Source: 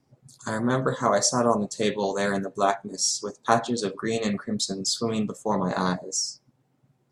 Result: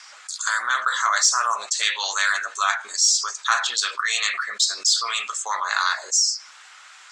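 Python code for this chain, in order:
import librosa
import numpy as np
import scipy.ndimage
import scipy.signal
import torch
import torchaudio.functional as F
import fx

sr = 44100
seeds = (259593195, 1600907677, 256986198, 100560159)

p1 = scipy.signal.sosfilt(scipy.signal.ellip(3, 1.0, 80, [1300.0, 7700.0], 'bandpass', fs=sr, output='sos'), x)
p2 = 10.0 ** (-20.5 / 20.0) * np.tanh(p1 / 10.0 ** (-20.5 / 20.0))
p3 = p1 + (p2 * librosa.db_to_amplitude(-11.0))
p4 = fx.env_flatten(p3, sr, amount_pct=50)
y = p4 * librosa.db_to_amplitude(4.0)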